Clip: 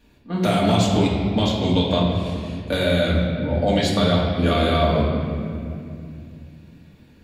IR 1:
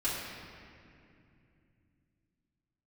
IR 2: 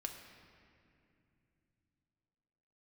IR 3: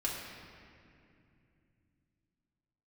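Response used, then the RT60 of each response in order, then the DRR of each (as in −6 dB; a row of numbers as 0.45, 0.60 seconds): 3; 2.6, 2.7, 2.6 seconds; −10.5, 2.5, −5.0 decibels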